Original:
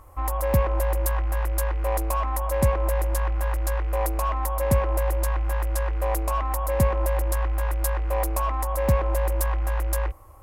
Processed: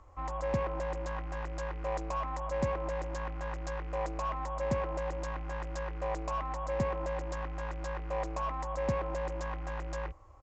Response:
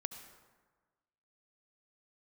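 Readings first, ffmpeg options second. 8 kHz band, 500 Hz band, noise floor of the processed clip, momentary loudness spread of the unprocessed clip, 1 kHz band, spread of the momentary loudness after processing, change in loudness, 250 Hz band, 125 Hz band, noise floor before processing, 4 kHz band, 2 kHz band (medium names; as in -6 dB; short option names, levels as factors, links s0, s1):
-18.0 dB, -7.5 dB, -39 dBFS, 4 LU, -7.5 dB, 6 LU, -10.5 dB, -7.0 dB, -13.5 dB, -26 dBFS, -8.5 dB, -7.5 dB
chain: -filter_complex "[0:a]acrossover=split=120|3800[s0][s1][s2];[s0]asoftclip=type=tanh:threshold=0.0299[s3];[s2]alimiter=limit=0.0794:level=0:latency=1[s4];[s3][s1][s4]amix=inputs=3:normalize=0,aresample=16000,aresample=44100,volume=0.422"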